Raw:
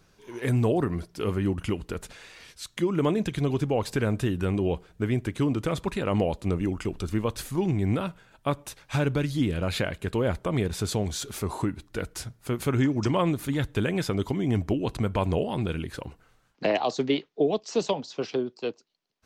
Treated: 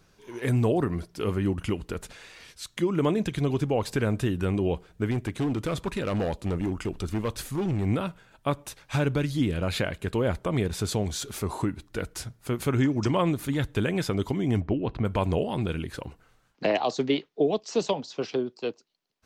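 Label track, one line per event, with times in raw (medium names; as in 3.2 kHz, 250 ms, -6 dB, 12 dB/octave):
5.110000	7.860000	hard clipper -23 dBFS
14.600000	15.050000	distance through air 290 m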